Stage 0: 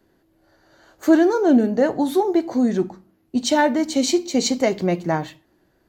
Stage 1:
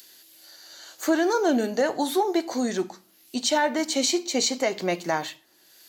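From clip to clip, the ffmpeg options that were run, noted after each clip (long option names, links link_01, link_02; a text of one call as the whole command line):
ffmpeg -i in.wav -filter_complex "[0:a]highpass=frequency=830:poles=1,acrossover=split=3100[link_01][link_02];[link_02]acompressor=mode=upward:threshold=-34dB:ratio=2.5[link_03];[link_01][link_03]amix=inputs=2:normalize=0,alimiter=limit=-15dB:level=0:latency=1:release=99,volume=2.5dB" out.wav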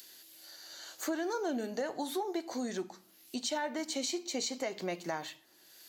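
ffmpeg -i in.wav -af "acompressor=threshold=-36dB:ratio=2,volume=-3dB" out.wav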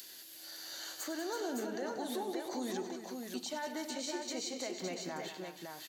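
ffmpeg -i in.wav -af "alimiter=level_in=10dB:limit=-24dB:level=0:latency=1:release=472,volume=-10dB,aecho=1:1:99|186|328|561:0.224|0.299|0.335|0.596,volume=3dB" out.wav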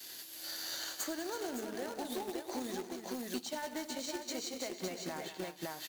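ffmpeg -i in.wav -af "acompressor=threshold=-46dB:ratio=16,agate=range=-33dB:threshold=-43dB:ratio=3:detection=peak,acrusher=bits=2:mode=log:mix=0:aa=0.000001,volume=15.5dB" out.wav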